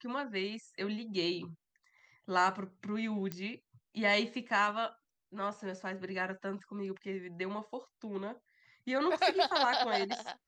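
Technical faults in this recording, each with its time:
3.32 s: pop -23 dBFS

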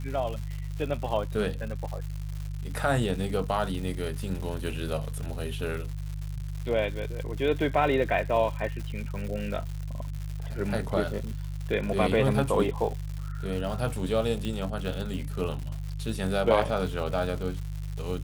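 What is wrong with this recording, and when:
crackle 220 per s -35 dBFS
hum 50 Hz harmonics 3 -34 dBFS
14.45 s: pop -20 dBFS

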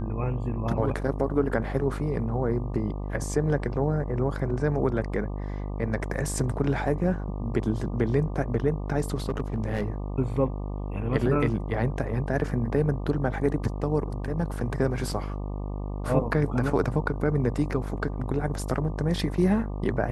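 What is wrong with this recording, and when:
buzz 50 Hz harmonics 24 -32 dBFS
9.29–9.88 s: clipped -22 dBFS

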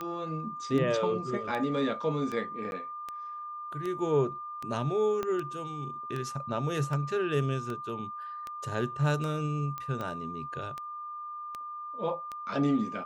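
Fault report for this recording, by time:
tick 78 rpm -23 dBFS
whine 1.2 kHz -37 dBFS
2.71–2.72 s: dropout 11 ms
5.23 s: pop -19 dBFS
9.78 s: pop -23 dBFS

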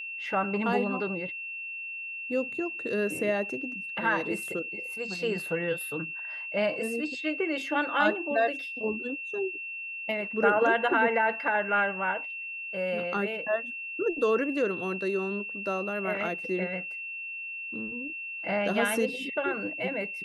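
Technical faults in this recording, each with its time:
whine 2.7 kHz -35 dBFS

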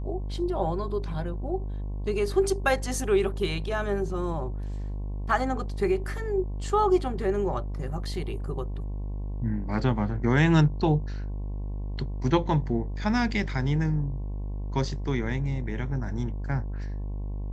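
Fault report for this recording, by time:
buzz 50 Hz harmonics 22 -32 dBFS

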